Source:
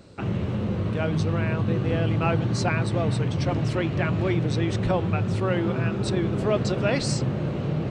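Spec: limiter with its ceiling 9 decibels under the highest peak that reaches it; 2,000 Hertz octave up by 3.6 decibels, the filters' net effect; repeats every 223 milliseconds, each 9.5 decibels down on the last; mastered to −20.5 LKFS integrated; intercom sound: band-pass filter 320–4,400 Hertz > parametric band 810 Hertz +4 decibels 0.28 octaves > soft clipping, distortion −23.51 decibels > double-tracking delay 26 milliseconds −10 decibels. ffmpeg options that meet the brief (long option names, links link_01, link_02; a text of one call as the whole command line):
ffmpeg -i in.wav -filter_complex "[0:a]equalizer=frequency=2000:width_type=o:gain=5,alimiter=limit=-18dB:level=0:latency=1,highpass=320,lowpass=4400,equalizer=frequency=810:width_type=o:width=0.28:gain=4,aecho=1:1:223|446|669|892:0.335|0.111|0.0365|0.012,asoftclip=threshold=-18.5dB,asplit=2[link_01][link_02];[link_02]adelay=26,volume=-10dB[link_03];[link_01][link_03]amix=inputs=2:normalize=0,volume=10.5dB" out.wav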